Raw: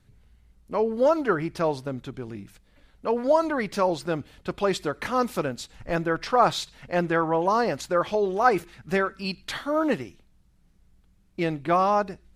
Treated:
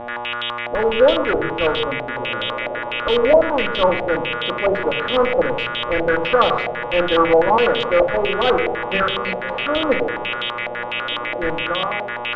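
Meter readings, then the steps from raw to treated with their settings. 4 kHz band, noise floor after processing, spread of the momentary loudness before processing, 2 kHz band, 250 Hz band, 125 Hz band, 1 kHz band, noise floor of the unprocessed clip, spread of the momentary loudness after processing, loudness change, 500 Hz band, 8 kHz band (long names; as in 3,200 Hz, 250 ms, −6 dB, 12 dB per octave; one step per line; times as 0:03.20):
+14.5 dB, −28 dBFS, 12 LU, +11.0 dB, +2.5 dB, +1.0 dB, +4.5 dB, −61 dBFS, 9 LU, +6.5 dB, +8.0 dB, below −10 dB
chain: fade-out on the ending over 1.25 s
parametric band 470 Hz +14.5 dB 0.39 octaves
in parallel at −6 dB: comparator with hysteresis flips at −14.5 dBFS
on the sum: floating-point word with a short mantissa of 4 bits
hum with harmonics 120 Hz, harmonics 31, −28 dBFS 0 dB per octave
on a send: feedback delay with all-pass diffusion 1,477 ms, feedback 48%, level −15 dB
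on the sum: rectangular room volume 2,400 cubic metres, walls furnished, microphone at 2.4 metres
low-pass on a step sequencer 12 Hz 730–3,300 Hz
level −5 dB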